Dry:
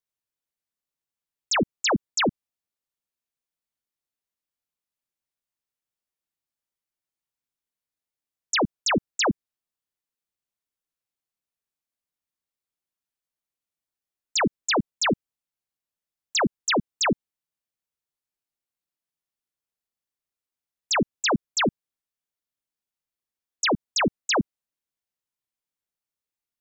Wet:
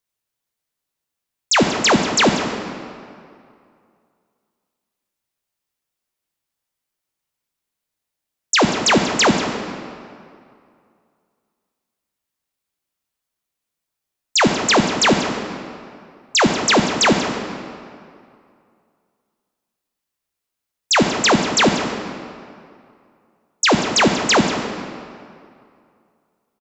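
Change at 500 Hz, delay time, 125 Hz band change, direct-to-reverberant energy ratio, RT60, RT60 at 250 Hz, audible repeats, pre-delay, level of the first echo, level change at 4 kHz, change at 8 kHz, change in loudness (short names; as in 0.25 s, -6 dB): +9.0 dB, 0.187 s, +9.0 dB, 3.5 dB, 2.3 s, 2.3 s, 1, 7 ms, -14.0 dB, +9.0 dB, +8.5 dB, +8.0 dB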